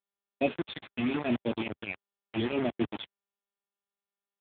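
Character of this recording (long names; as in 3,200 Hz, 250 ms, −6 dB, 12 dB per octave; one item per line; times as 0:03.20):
phaser sweep stages 12, 0.83 Hz, lowest notch 360–1,700 Hz
tremolo triangle 4.7 Hz, depth 60%
a quantiser's noise floor 6 bits, dither none
AMR narrowband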